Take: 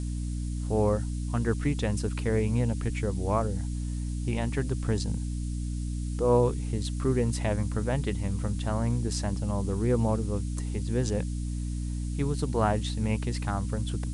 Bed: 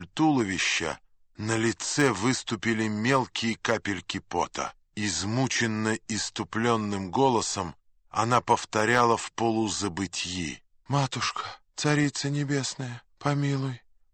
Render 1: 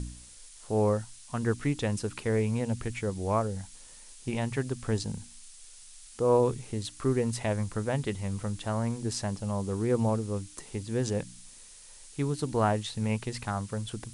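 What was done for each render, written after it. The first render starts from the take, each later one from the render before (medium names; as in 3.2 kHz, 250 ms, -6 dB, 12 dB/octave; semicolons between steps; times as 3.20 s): de-hum 60 Hz, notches 5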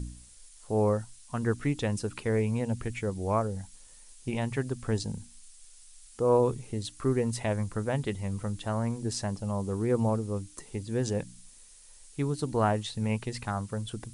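noise reduction 6 dB, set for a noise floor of -51 dBFS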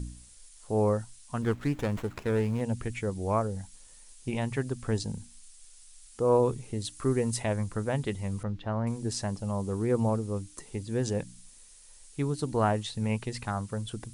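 1.42–2.61 s: sliding maximum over 9 samples; 6.79–7.41 s: treble shelf 9.3 kHz -> 5.4 kHz +6.5 dB; 8.43–8.87 s: distance through air 260 m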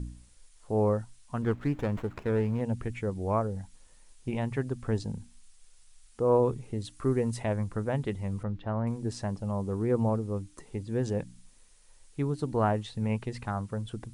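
treble shelf 3.4 kHz -11.5 dB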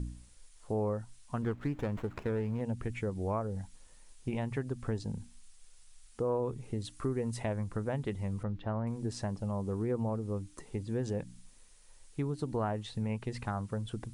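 compression 3:1, threshold -31 dBFS, peak gain reduction 9.5 dB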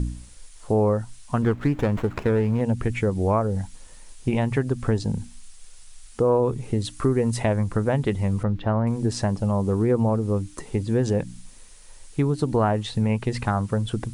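trim +12 dB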